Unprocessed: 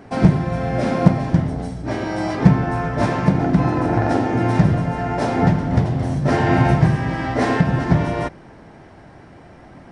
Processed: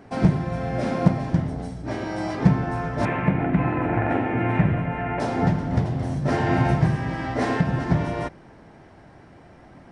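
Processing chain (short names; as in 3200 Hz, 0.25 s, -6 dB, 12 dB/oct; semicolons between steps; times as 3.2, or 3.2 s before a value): 3.05–5.2 resonant high shelf 3500 Hz -13 dB, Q 3; gain -5 dB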